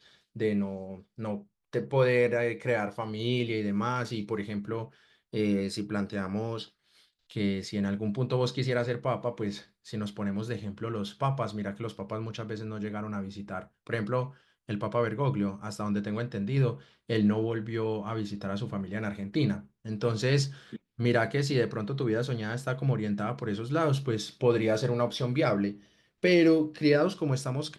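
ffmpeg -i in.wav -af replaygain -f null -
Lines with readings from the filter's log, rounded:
track_gain = +10.0 dB
track_peak = 0.192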